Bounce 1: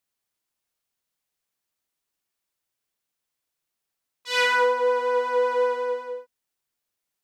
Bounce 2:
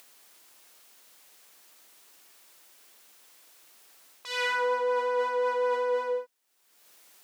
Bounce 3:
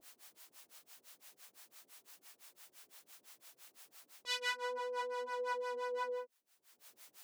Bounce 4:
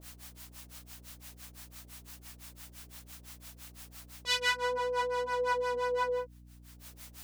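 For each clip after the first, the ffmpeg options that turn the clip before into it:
-af "areverse,acompressor=threshold=0.0355:ratio=10,areverse,highpass=290,acompressor=mode=upward:threshold=0.00631:ratio=2.5,volume=1.78"
-filter_complex "[0:a]acrossover=split=3500[s0][s1];[s0]alimiter=level_in=2.11:limit=0.0631:level=0:latency=1,volume=0.473[s2];[s2][s1]amix=inputs=2:normalize=0,acrossover=split=530[s3][s4];[s3]aeval=exprs='val(0)*(1-1/2+1/2*cos(2*PI*5.9*n/s))':c=same[s5];[s4]aeval=exprs='val(0)*(1-1/2-1/2*cos(2*PI*5.9*n/s))':c=same[s6];[s5][s6]amix=inputs=2:normalize=0,volume=1.19"
-af "aeval=exprs='val(0)+0.000891*(sin(2*PI*60*n/s)+sin(2*PI*2*60*n/s)/2+sin(2*PI*3*60*n/s)/3+sin(2*PI*4*60*n/s)/4+sin(2*PI*5*60*n/s)/5)':c=same,volume=2.51"

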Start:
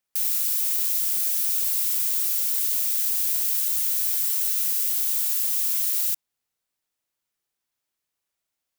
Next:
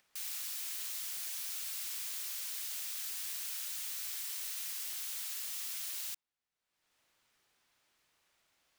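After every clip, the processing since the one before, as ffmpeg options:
-af "highshelf=f=8300:g=-10.5,acompressor=mode=upward:threshold=0.00224:ratio=2.5,equalizer=f=1900:w=0.37:g=4,volume=0.376"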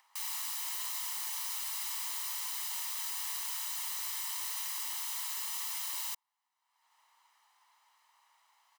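-af "highpass=f=930:t=q:w=4.9,aecho=1:1:1:0.49,volume=1.19"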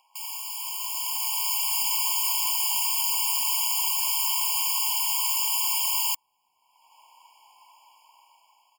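-af "dynaudnorm=f=450:g=5:m=3.16,afftfilt=real='re*eq(mod(floor(b*sr/1024/1100),2),0)':imag='im*eq(mod(floor(b*sr/1024/1100),2),0)':win_size=1024:overlap=0.75,volume=1.88"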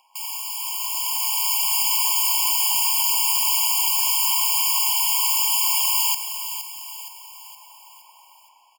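-filter_complex "[0:a]asoftclip=type=hard:threshold=0.178,asplit=2[s0][s1];[s1]aecho=0:1:468|936|1404|1872|2340:0.316|0.155|0.0759|0.0372|0.0182[s2];[s0][s2]amix=inputs=2:normalize=0,volume=1.68"

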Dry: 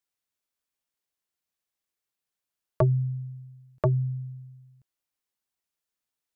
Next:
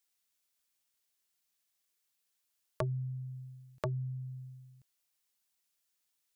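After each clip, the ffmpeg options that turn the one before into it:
-af "highshelf=f=2000:g=10,acompressor=threshold=0.0112:ratio=2,volume=0.794"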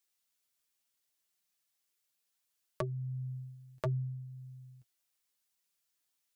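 -af "flanger=delay=5:depth=4.4:regen=31:speed=0.7:shape=triangular,volume=1.41"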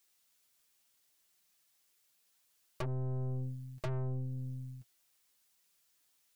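-af "aeval=exprs='(tanh(224*val(0)+0.7)-tanh(0.7))/224':c=same,volume=3.98"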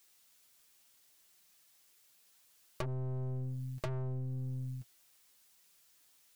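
-filter_complex "[0:a]asplit=2[s0][s1];[s1]asoftclip=type=hard:threshold=0.0106,volume=0.398[s2];[s0][s2]amix=inputs=2:normalize=0,acompressor=threshold=0.0126:ratio=6,volume=1.5"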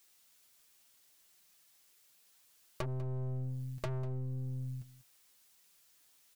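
-af "aecho=1:1:196:0.133"

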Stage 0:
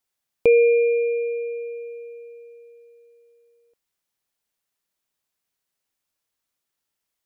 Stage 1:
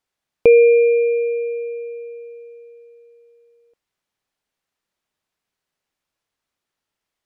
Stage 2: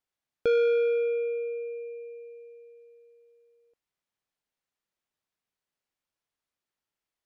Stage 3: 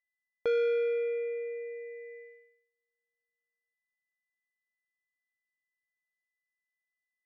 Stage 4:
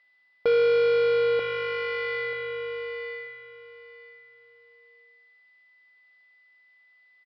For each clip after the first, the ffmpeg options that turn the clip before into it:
-af "aemphasis=mode=reproduction:type=50kf,volume=1.78"
-af "asoftclip=type=tanh:threshold=0.282,volume=0.376"
-af "aeval=exprs='val(0)+0.00398*sin(2*PI*2000*n/s)':c=same,agate=range=0.02:threshold=0.00708:ratio=16:detection=peak,bandreject=f=260.8:t=h:w=4,bandreject=f=521.6:t=h:w=4,bandreject=f=782.4:t=h:w=4,bandreject=f=1043.2:t=h:w=4,bandreject=f=1304:t=h:w=4,bandreject=f=1564.8:t=h:w=4,bandreject=f=1825.6:t=h:w=4,bandreject=f=2086.4:t=h:w=4,bandreject=f=2347.2:t=h:w=4,bandreject=f=2608:t=h:w=4,bandreject=f=2868.8:t=h:w=4,bandreject=f=3129.6:t=h:w=4,bandreject=f=3390.4:t=h:w=4,bandreject=f=3651.2:t=h:w=4,bandreject=f=3912:t=h:w=4,bandreject=f=4172.8:t=h:w=4,bandreject=f=4433.6:t=h:w=4,bandreject=f=4694.4:t=h:w=4,bandreject=f=4955.2:t=h:w=4,bandreject=f=5216:t=h:w=4,bandreject=f=5476.8:t=h:w=4,bandreject=f=5737.6:t=h:w=4,bandreject=f=5998.4:t=h:w=4,bandreject=f=6259.2:t=h:w=4,bandreject=f=6520:t=h:w=4,bandreject=f=6780.8:t=h:w=4,bandreject=f=7041.6:t=h:w=4,bandreject=f=7302.4:t=h:w=4,bandreject=f=7563.2:t=h:w=4,bandreject=f=7824:t=h:w=4,bandreject=f=8084.8:t=h:w=4,bandreject=f=8345.6:t=h:w=4,bandreject=f=8606.4:t=h:w=4,bandreject=f=8867.2:t=h:w=4,bandreject=f=9128:t=h:w=4,bandreject=f=9388.8:t=h:w=4,bandreject=f=9649.6:t=h:w=4,bandreject=f=9910.4:t=h:w=4,volume=0.596"
-filter_complex "[0:a]asplit=2[s0][s1];[s1]highpass=f=720:p=1,volume=20,asoftclip=type=tanh:threshold=0.0708[s2];[s0][s2]amix=inputs=2:normalize=0,lowpass=f=3800:p=1,volume=0.501,asplit=2[s3][s4];[s4]aecho=0:1:937|1874|2811:0.501|0.0952|0.0181[s5];[s3][s5]amix=inputs=2:normalize=0,aresample=11025,aresample=44100,volume=2"

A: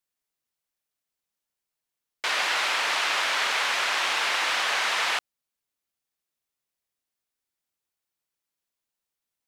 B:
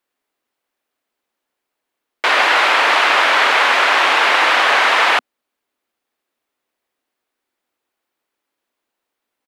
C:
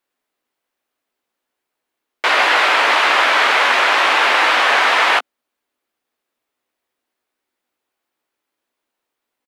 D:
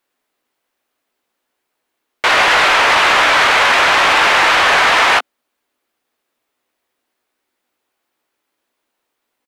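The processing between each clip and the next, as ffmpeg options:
-af "firequalizer=gain_entry='entry(170,0);entry(250,14);entry(5800,0)':delay=0.05:min_phase=1,volume=1.33"
-filter_complex "[0:a]asplit=2[s0][s1];[s1]adelay=16,volume=0.376[s2];[s0][s2]amix=inputs=2:normalize=0,volume=0.891"
-af "asoftclip=type=tanh:threshold=0.266,volume=1.88"

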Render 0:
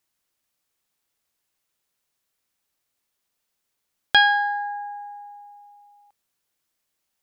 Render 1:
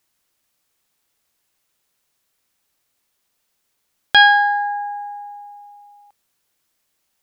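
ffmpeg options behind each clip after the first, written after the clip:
-af "alimiter=level_in=2.51:limit=0.891:release=50:level=0:latency=1,volume=0.891"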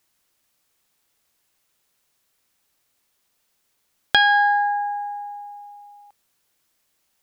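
-af "acompressor=threshold=0.2:ratio=6,volume=1.12"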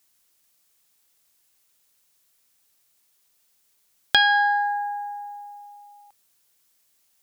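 -af "highshelf=f=3800:g=9,volume=0.668"

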